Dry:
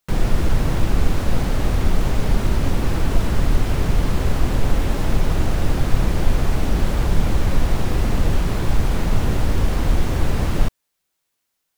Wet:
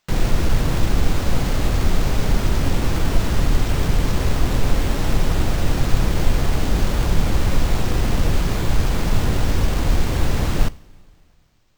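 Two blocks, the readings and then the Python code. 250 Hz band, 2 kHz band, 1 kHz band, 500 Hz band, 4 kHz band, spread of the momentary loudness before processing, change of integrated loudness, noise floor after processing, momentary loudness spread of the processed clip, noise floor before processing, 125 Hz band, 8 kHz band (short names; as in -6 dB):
0.0 dB, +1.5 dB, +0.5 dB, 0.0 dB, +3.5 dB, 1 LU, +0.5 dB, -53 dBFS, 1 LU, -75 dBFS, 0.0 dB, +3.5 dB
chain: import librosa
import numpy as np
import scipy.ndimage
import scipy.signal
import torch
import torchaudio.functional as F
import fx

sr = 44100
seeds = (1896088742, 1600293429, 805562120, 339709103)

y = fx.high_shelf(x, sr, hz=3800.0, db=6.0)
y = fx.rev_double_slope(y, sr, seeds[0], early_s=0.42, late_s=2.8, knee_db=-15, drr_db=17.0)
y = np.repeat(y[::4], 4)[:len(y)]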